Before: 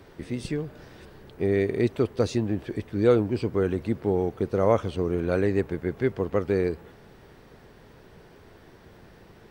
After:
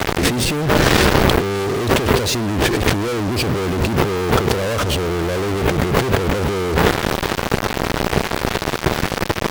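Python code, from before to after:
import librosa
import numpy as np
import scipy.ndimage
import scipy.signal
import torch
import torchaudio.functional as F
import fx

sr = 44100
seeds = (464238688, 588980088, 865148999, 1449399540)

y = fx.fuzz(x, sr, gain_db=47.0, gate_db=-47.0)
y = fx.over_compress(y, sr, threshold_db=-22.0, ratio=-1.0)
y = y * librosa.db_to_amplitude(4.5)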